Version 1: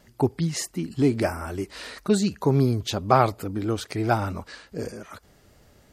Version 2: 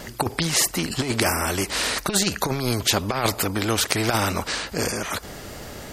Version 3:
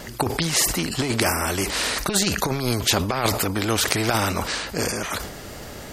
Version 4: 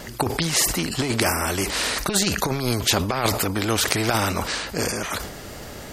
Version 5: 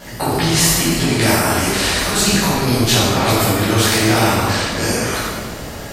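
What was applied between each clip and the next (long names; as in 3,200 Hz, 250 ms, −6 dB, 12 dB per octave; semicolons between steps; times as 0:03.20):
compressor whose output falls as the input rises −22 dBFS, ratio −0.5; every bin compressed towards the loudest bin 2 to 1; level +6 dB
level that may fall only so fast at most 68 dB per second
no processing that can be heard
convolution reverb RT60 1.5 s, pre-delay 8 ms, DRR −10.5 dB; level −4 dB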